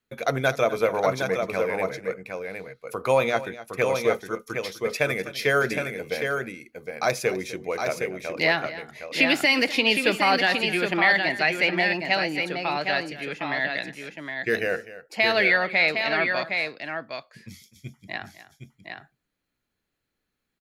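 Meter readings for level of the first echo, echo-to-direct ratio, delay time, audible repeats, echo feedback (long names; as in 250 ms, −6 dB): −16.0 dB, −5.0 dB, 252 ms, 2, repeats not evenly spaced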